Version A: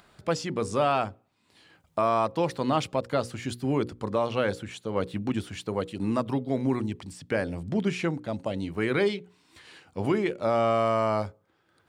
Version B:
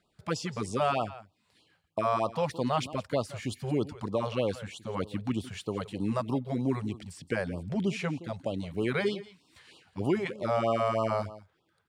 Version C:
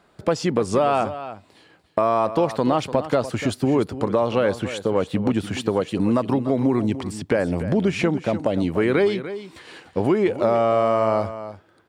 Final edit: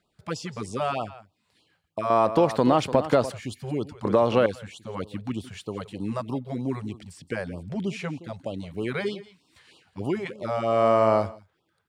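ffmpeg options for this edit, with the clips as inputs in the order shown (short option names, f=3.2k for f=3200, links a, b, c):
-filter_complex "[2:a]asplit=3[a][b][c];[1:a]asplit=4[d][e][f][g];[d]atrim=end=2.102[h];[a]atrim=start=2.098:end=3.322[i];[e]atrim=start=3.318:end=4.052[j];[b]atrim=start=4.048:end=4.462[k];[f]atrim=start=4.458:end=10.86[l];[c]atrim=start=10.62:end=11.39[m];[g]atrim=start=11.15[n];[h][i]acrossfade=d=0.004:c1=hsin:c2=hsin[o];[o][j]acrossfade=d=0.004:c1=hsin:c2=hsin[p];[p][k]acrossfade=d=0.004:c1=hsin:c2=hsin[q];[q][l]acrossfade=d=0.004:c1=hsin:c2=hsin[r];[r][m]acrossfade=d=0.24:c1=tri:c2=tri[s];[s][n]acrossfade=d=0.24:c1=tri:c2=tri"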